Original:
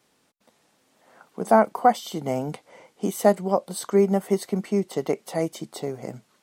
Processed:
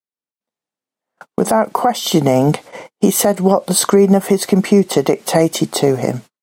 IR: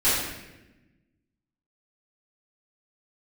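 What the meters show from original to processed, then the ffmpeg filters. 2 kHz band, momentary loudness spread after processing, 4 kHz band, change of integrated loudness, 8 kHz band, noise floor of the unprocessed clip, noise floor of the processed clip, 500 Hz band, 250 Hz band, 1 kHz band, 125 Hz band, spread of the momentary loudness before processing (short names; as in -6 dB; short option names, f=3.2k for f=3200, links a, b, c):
+8.0 dB, 6 LU, +17.0 dB, +9.5 dB, +17.5 dB, -67 dBFS, under -85 dBFS, +8.5 dB, +11.5 dB, +5.0 dB, +13.5 dB, 14 LU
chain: -af "agate=range=-43dB:threshold=-48dB:ratio=16:detection=peak,acompressor=threshold=-22dB:ratio=6,alimiter=limit=-20.5dB:level=0:latency=1:release=120,dynaudnorm=f=130:g=5:m=12.5dB,volume=6dB"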